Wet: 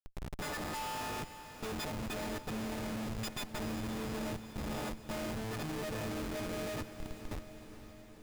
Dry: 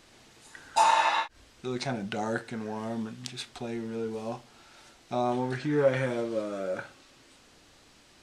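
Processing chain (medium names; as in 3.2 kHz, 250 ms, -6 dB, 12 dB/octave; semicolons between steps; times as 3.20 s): partials quantised in pitch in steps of 6 st; compression 6:1, threshold -38 dBFS, peak gain reduction 22.5 dB; Schmitt trigger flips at -38.5 dBFS; on a send: echo that smears into a reverb 485 ms, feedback 64%, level -12 dB; on the sum: trim +3 dB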